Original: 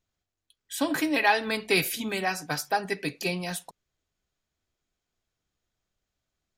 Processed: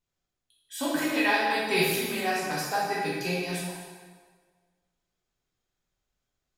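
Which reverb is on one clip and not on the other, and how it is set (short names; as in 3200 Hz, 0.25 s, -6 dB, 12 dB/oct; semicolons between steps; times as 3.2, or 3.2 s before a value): plate-style reverb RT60 1.6 s, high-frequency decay 0.8×, DRR -6.5 dB; gain -7 dB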